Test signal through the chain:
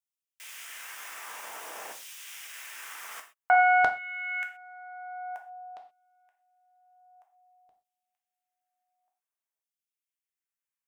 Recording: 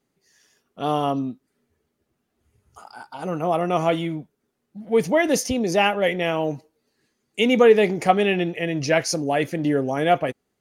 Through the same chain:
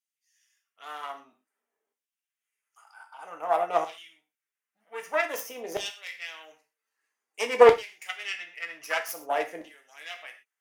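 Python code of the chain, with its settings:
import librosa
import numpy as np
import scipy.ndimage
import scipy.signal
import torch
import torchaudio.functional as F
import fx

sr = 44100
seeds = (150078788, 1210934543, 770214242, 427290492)

y = fx.self_delay(x, sr, depth_ms=0.21)
y = scipy.signal.sosfilt(scipy.signal.butter(2, 120.0, 'highpass', fs=sr, output='sos'), y)
y = fx.peak_eq(y, sr, hz=4200.0, db=-12.5, octaves=0.49)
y = fx.filter_lfo_highpass(y, sr, shape='saw_down', hz=0.52, low_hz=570.0, high_hz=3800.0, q=1.3)
y = fx.rev_gated(y, sr, seeds[0], gate_ms=150, shape='falling', drr_db=3.5)
y = fx.upward_expand(y, sr, threshold_db=-29.0, expansion=1.5)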